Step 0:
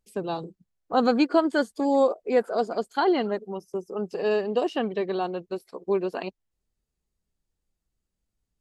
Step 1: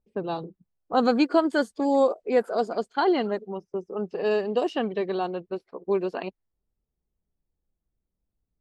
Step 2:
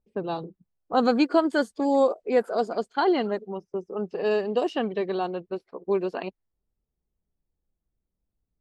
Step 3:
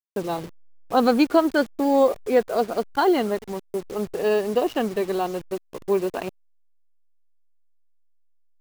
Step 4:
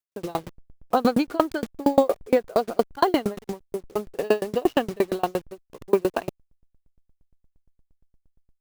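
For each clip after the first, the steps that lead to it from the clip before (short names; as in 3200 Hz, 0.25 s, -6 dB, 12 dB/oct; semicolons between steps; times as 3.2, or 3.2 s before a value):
low-pass opened by the level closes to 890 Hz, open at -20.5 dBFS
nothing audible
level-crossing sampler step -38 dBFS; gain +3 dB
dB-ramp tremolo decaying 8.6 Hz, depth 32 dB; gain +7.5 dB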